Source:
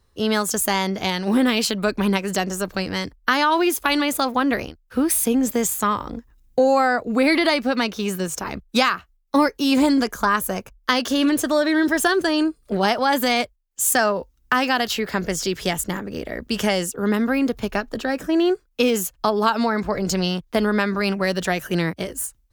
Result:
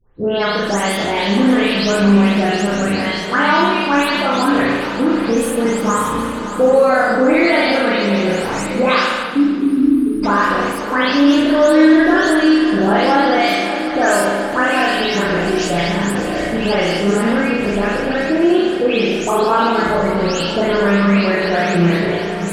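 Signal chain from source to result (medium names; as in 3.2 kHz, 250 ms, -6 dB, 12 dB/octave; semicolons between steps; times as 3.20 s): delay that grows with frequency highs late, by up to 314 ms; on a send: shuffle delay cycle 765 ms, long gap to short 3:1, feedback 69%, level -15.5 dB; on the sum: spectral selection erased 9.23–10.23 s, 440–8600 Hz; treble shelf 7 kHz +10.5 dB; spring tank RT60 1.1 s, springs 35 ms, chirp 55 ms, DRR -4 dB; in parallel at +0.5 dB: peak limiter -12.5 dBFS, peak gain reduction 13 dB; on the sum: distance through air 92 m; modulated delay 145 ms, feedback 70%, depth 182 cents, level -16 dB; trim -2.5 dB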